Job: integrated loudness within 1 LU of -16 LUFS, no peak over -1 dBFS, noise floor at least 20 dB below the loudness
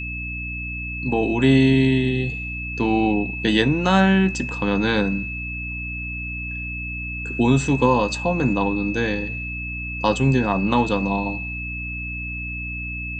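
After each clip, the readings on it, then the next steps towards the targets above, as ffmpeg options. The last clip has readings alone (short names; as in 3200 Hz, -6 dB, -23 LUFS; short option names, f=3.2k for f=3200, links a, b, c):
hum 60 Hz; harmonics up to 300 Hz; hum level -30 dBFS; steady tone 2600 Hz; tone level -29 dBFS; loudness -21.5 LUFS; peak -2.5 dBFS; loudness target -16.0 LUFS
-> -af "bandreject=f=60:t=h:w=4,bandreject=f=120:t=h:w=4,bandreject=f=180:t=h:w=4,bandreject=f=240:t=h:w=4,bandreject=f=300:t=h:w=4"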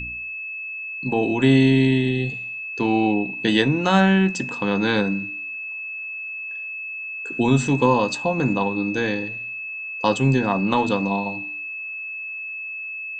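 hum none; steady tone 2600 Hz; tone level -29 dBFS
-> -af "bandreject=f=2.6k:w=30"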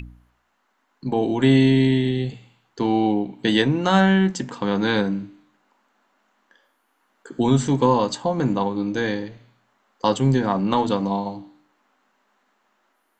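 steady tone none; loudness -21.0 LUFS; peak -3.5 dBFS; loudness target -16.0 LUFS
-> -af "volume=5dB,alimiter=limit=-1dB:level=0:latency=1"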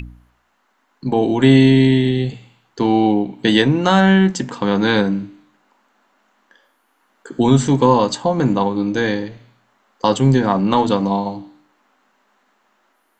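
loudness -16.0 LUFS; peak -1.0 dBFS; noise floor -64 dBFS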